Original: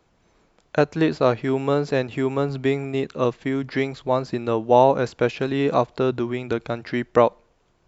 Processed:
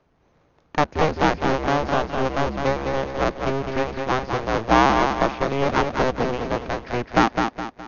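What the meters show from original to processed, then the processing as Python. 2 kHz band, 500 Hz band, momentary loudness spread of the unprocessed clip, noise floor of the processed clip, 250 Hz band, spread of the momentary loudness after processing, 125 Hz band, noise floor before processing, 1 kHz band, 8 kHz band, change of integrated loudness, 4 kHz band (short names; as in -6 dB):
+5.5 dB, -2.5 dB, 8 LU, -62 dBFS, -0.5 dB, 7 LU, -0.5 dB, -64 dBFS, +4.0 dB, n/a, 0.0 dB, +5.0 dB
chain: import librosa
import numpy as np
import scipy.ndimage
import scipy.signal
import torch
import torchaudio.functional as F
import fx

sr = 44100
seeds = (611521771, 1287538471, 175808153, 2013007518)

p1 = fx.cycle_switch(x, sr, every=2, mode='inverted')
p2 = fx.brickwall_lowpass(p1, sr, high_hz=6800.0)
p3 = fx.high_shelf(p2, sr, hz=2500.0, db=-10.5)
y = p3 + fx.echo_feedback(p3, sr, ms=208, feedback_pct=39, wet_db=-5.0, dry=0)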